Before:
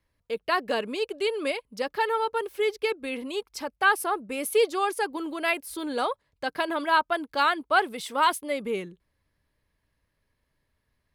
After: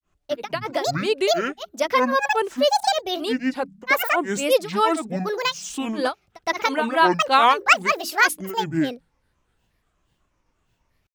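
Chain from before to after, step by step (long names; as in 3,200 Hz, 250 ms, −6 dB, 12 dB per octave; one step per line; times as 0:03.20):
mains-hum notches 50/100/150/200/250/300 Hz
granular cloud 250 ms, grains 8.3 per second, pitch spread up and down by 12 semitones
level +8 dB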